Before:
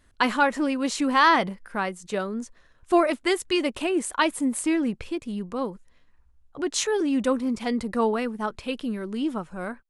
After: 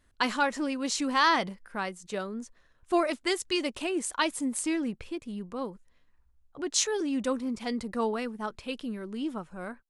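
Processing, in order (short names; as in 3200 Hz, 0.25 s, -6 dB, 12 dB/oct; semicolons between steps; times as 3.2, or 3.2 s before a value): dynamic EQ 5700 Hz, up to +8 dB, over -45 dBFS, Q 0.86; gain -6 dB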